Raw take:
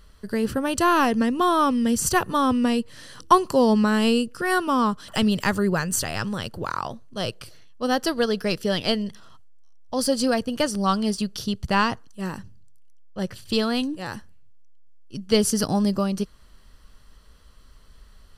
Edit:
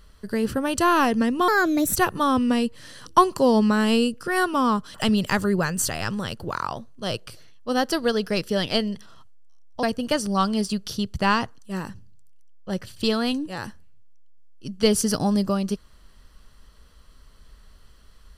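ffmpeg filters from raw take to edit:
-filter_complex "[0:a]asplit=4[a][b][c][d];[a]atrim=end=1.484[e];[b]atrim=start=1.48:end=2.1,asetpts=PTS-STARTPTS,asetrate=56889,aresample=44100,atrim=end_sample=21195,asetpts=PTS-STARTPTS[f];[c]atrim=start=2.096:end=9.972[g];[d]atrim=start=10.318[h];[e][f]acrossfade=d=0.004:c1=hsin:c2=hsin[i];[i][g]acrossfade=d=0.004:c1=hsin:c2=hsin[j];[j][h]acrossfade=d=0.004:c1=hsin:c2=hsin"

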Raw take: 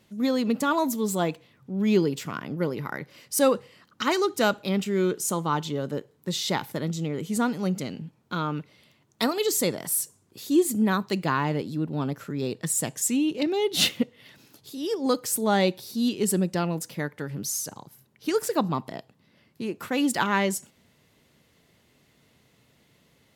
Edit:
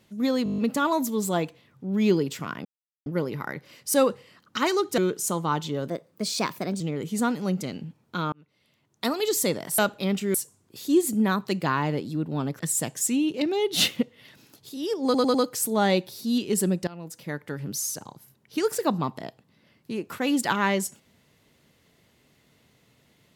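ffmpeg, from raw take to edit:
-filter_complex "[0:a]asplit=20[a][b][c][d][e][f][g][h][i][j][k][l][m][n][o][p][q][r][s][t];[a]atrim=end=0.462[u];[b]atrim=start=0.438:end=0.462[v];[c]atrim=start=0.438:end=0.462[w];[d]atrim=start=0.438:end=0.462[x];[e]atrim=start=0.438:end=0.462[y];[f]atrim=start=0.438:end=0.462[z];[g]atrim=start=0.438:end=0.462[aa];[h]atrim=start=0.438:end=2.51,asetpts=PTS-STARTPTS,afade=t=out:st=2.068:d=0.004:c=hsin,apad=pad_dur=0.41[ab];[i]atrim=start=2.51:end=4.432,asetpts=PTS-STARTPTS,afade=t=in:d=0.004:c=hsin[ac];[j]atrim=start=4.988:end=5.894[ad];[k]atrim=start=5.89:end=6.98,asetpts=PTS-STARTPTS,asetrate=52038,aresample=44100,atrim=end_sample=40736,asetpts=PTS-STARTPTS[ae];[l]atrim=start=6.976:end=8.5,asetpts=PTS-STARTPTS,afade=t=out:st=1.52:d=0.004:c=hsin[af];[m]atrim=start=8.5:end=9.962,asetpts=PTS-STARTPTS,afade=t=in:d=0.93[ag];[n]atrim=start=4.428:end=4.992[ah];[o]atrim=start=9.958:end=12.212[ai];[p]atrim=start=12.598:end=15.152[aj];[q]atrim=start=15.048:end=15.152[ak];[r]atrim=start=15.048:end=15.152[al];[s]atrim=start=15.048:end=16.58,asetpts=PTS-STARTPTS,afade=t=out:st=1.528:d=0.004:c=hsin:silence=0.0891251[am];[t]atrim=start=16.58,asetpts=PTS-STARTPTS,afade=t=in:d=0.61:silence=0.0891251[an];[u][v]acrossfade=d=0.004:c1=hsin:c2=hsin[ao];[ao][w]acrossfade=d=0.004:c1=hsin:c2=hsin[ap];[ap][x]acrossfade=d=0.004:c1=hsin:c2=hsin[aq];[aq][y]acrossfade=d=0.004:c1=hsin:c2=hsin[ar];[ar][z]acrossfade=d=0.004:c1=hsin:c2=hsin[as];[as][aa]acrossfade=d=0.004:c1=hsin:c2=hsin[at];[ab][ac]concat=n=2:v=0:a=1[au];[at][au]acrossfade=d=0.004:c1=hsin:c2=hsin[av];[av][ad]acrossfade=d=0.004:c1=hsin:c2=hsin[aw];[aw][ae]acrossfade=d=0.004:c1=hsin:c2=hsin[ax];[af][ag]concat=n=2:v=0:a=1[ay];[ax][ay]acrossfade=d=0.004:c1=hsin:c2=hsin[az];[az][ah]acrossfade=d=0.004:c1=hsin:c2=hsin[ba];[ba][ai]acrossfade=d=0.004:c1=hsin:c2=hsin[bb];[bb][aj]acrossfade=d=0.004:c1=hsin:c2=hsin[bc];[bc][ak]acrossfade=d=0.004:c1=hsin:c2=hsin[bd];[bd][al]acrossfade=d=0.004:c1=hsin:c2=hsin[be];[am][an]concat=n=2:v=0:a=1[bf];[be][bf]acrossfade=d=0.004:c1=hsin:c2=hsin"

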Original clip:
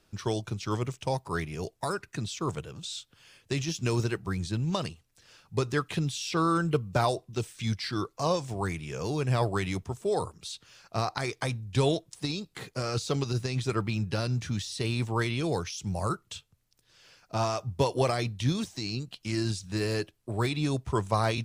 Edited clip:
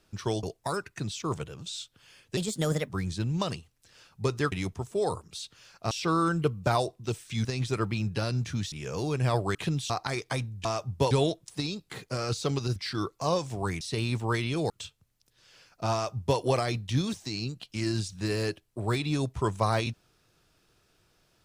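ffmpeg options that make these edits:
-filter_complex "[0:a]asplit=15[a][b][c][d][e][f][g][h][i][j][k][l][m][n][o];[a]atrim=end=0.432[p];[b]atrim=start=1.598:end=3.544[q];[c]atrim=start=3.54:end=4.22,asetpts=PTS-STARTPTS,asetrate=57771,aresample=44100[r];[d]atrim=start=4.216:end=5.852[s];[e]atrim=start=9.618:end=11.012[t];[f]atrim=start=6.198:end=7.742[u];[g]atrim=start=13.408:end=14.682[v];[h]atrim=start=8.788:end=9.622[w];[i]atrim=start=5.848:end=6.202[x];[j]atrim=start=11.008:end=11.762[y];[k]atrim=start=17.438:end=17.902[z];[l]atrim=start=11.758:end=13.412[aa];[m]atrim=start=7.738:end=8.792[ab];[n]atrim=start=14.678:end=15.572[ac];[o]atrim=start=16.208[ad];[p][q]acrossfade=d=0.004:c1=hsin:c2=hsin[ae];[ae][r]acrossfade=d=0.004:c1=hsin:c2=hsin[af];[af][s]acrossfade=d=0.004:c1=hsin:c2=hsin[ag];[ag][t]acrossfade=d=0.004:c1=hsin:c2=hsin[ah];[ah][u]acrossfade=d=0.004:c1=hsin:c2=hsin[ai];[ai][v]acrossfade=d=0.004:c1=hsin:c2=hsin[aj];[aj][w]acrossfade=d=0.004:c1=hsin:c2=hsin[ak];[ak][x]acrossfade=d=0.004:c1=hsin:c2=hsin[al];[al][y]acrossfade=d=0.004:c1=hsin:c2=hsin[am];[am][z]acrossfade=d=0.004:c1=hsin:c2=hsin[an];[an][aa]acrossfade=d=0.004:c1=hsin:c2=hsin[ao];[ao][ab]acrossfade=d=0.004:c1=hsin:c2=hsin[ap];[ap][ac]acrossfade=d=0.004:c1=hsin:c2=hsin[aq];[aq][ad]acrossfade=d=0.004:c1=hsin:c2=hsin"

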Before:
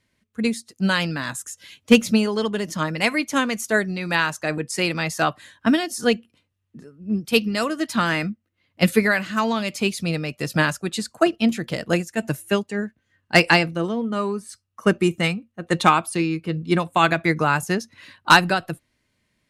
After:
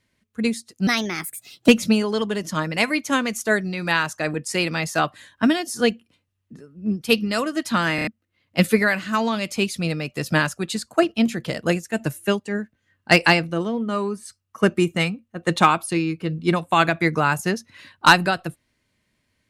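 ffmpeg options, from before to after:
-filter_complex "[0:a]asplit=7[a][b][c][d][e][f][g];[a]atrim=end=0.874[h];[b]atrim=start=0.87:end=1.92,asetpts=PTS-STARTPTS,asetrate=56889,aresample=44100,atrim=end_sample=35895,asetpts=PTS-STARTPTS[i];[c]atrim=start=1.916:end=8.222[j];[d]atrim=start=8.188:end=8.222[k];[e]atrim=start=8.188:end=8.222[l];[f]atrim=start=8.188:end=8.222[m];[g]atrim=start=8.308[n];[h][i]acrossfade=d=0.004:c1=hsin:c2=hsin[o];[o][j]acrossfade=d=0.004:c1=hsin:c2=hsin[p];[p][k]acrossfade=d=0.004:c1=hsin:c2=hsin[q];[q][l]acrossfade=d=0.004:c1=hsin:c2=hsin[r];[r][m]acrossfade=d=0.004:c1=hsin:c2=hsin[s];[s][n]acrossfade=d=0.004:c1=hsin:c2=hsin"

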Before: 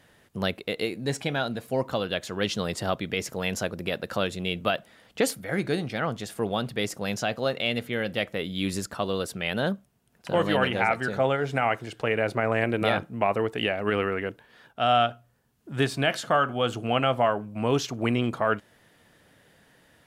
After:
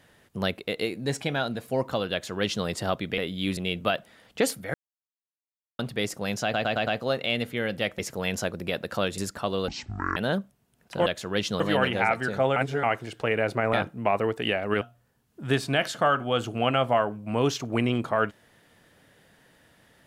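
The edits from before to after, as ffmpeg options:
-filter_complex "[0:a]asplit=19[a][b][c][d][e][f][g][h][i][j][k][l][m][n][o][p][q][r][s];[a]atrim=end=3.182[t];[b]atrim=start=8.348:end=8.742[u];[c]atrim=start=4.368:end=5.54,asetpts=PTS-STARTPTS,afade=t=out:st=1.168:d=0.004:c=hsin[v];[d]atrim=start=5.54:end=6.59,asetpts=PTS-STARTPTS,volume=0[w];[e]atrim=start=6.59:end=7.342,asetpts=PTS-STARTPTS,afade=t=in:d=0.004:c=hsin[x];[f]atrim=start=7.228:end=7.342[y];[g]atrim=start=7.228:end=7.342[z];[h]atrim=start=7.228:end=7.342[aa];[i]atrim=start=7.228:end=8.352[ab];[j]atrim=start=3.178:end=4.372[ac];[k]atrim=start=8.738:end=9.244[ad];[l]atrim=start=9.24:end=9.5,asetpts=PTS-STARTPTS,asetrate=23814,aresample=44100,atrim=end_sample=21233,asetpts=PTS-STARTPTS[ae];[m]atrim=start=9.496:end=10.402[af];[n]atrim=start=2.118:end=2.662[ag];[o]atrim=start=10.398:end=11.362[ah];[p]atrim=start=11.358:end=11.632,asetpts=PTS-STARTPTS,areverse[ai];[q]atrim=start=11.628:end=12.532[aj];[r]atrim=start=12.888:end=13.972[ak];[s]atrim=start=15.098[al];[t][u]acrossfade=d=0.004:c1=hsin:c2=hsin[am];[v][w][x]concat=n=3:v=0:a=1[an];[am][an]acrossfade=d=0.004:c1=hsin:c2=hsin[ao];[ao][y]acrossfade=d=0.004:c1=hsin:c2=hsin[ap];[ap][z]acrossfade=d=0.004:c1=hsin:c2=hsin[aq];[aq][aa]acrossfade=d=0.004:c1=hsin:c2=hsin[ar];[ar][ab]acrossfade=d=0.004:c1=hsin:c2=hsin[as];[as][ac]acrossfade=d=0.004:c1=hsin:c2=hsin[at];[at][ad]acrossfade=d=0.004:c1=hsin:c2=hsin[au];[au][ae]acrossfade=d=0.004:c1=hsin:c2=hsin[av];[av][af]acrossfade=d=0.004:c1=hsin:c2=hsin[aw];[aw][ag]acrossfade=d=0.004:c1=hsin:c2=hsin[ax];[ax][ah]acrossfade=d=0.004:c1=hsin:c2=hsin[ay];[ay][ai]acrossfade=d=0.004:c1=hsin:c2=hsin[az];[az][aj]acrossfade=d=0.004:c1=hsin:c2=hsin[ba];[ba][ak]acrossfade=d=0.004:c1=hsin:c2=hsin[bb];[bb][al]acrossfade=d=0.004:c1=hsin:c2=hsin"

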